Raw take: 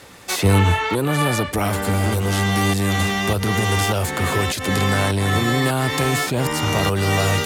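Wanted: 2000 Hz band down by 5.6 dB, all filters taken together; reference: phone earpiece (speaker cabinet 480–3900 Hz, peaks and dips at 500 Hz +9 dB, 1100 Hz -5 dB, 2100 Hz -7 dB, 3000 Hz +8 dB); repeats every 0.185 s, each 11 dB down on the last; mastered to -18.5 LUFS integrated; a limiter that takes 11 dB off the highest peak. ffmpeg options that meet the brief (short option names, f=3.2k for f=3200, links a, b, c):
-af "equalizer=f=2k:t=o:g=-5,alimiter=limit=-16.5dB:level=0:latency=1,highpass=480,equalizer=f=500:t=q:w=4:g=9,equalizer=f=1.1k:t=q:w=4:g=-5,equalizer=f=2.1k:t=q:w=4:g=-7,equalizer=f=3k:t=q:w=4:g=8,lowpass=f=3.9k:w=0.5412,lowpass=f=3.9k:w=1.3066,aecho=1:1:185|370|555:0.282|0.0789|0.0221,volume=9.5dB"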